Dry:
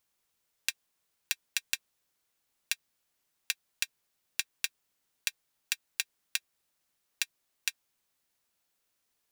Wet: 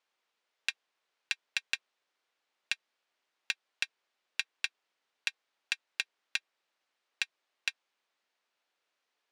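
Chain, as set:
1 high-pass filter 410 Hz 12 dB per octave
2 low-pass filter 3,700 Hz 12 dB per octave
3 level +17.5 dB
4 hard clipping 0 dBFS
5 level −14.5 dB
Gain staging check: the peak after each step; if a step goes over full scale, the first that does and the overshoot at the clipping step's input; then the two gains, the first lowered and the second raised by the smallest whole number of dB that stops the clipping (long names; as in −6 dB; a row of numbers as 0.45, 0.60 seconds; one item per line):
−5.5, −14.0, +3.5, 0.0, −14.5 dBFS
step 3, 3.5 dB
step 3 +13.5 dB, step 5 −10.5 dB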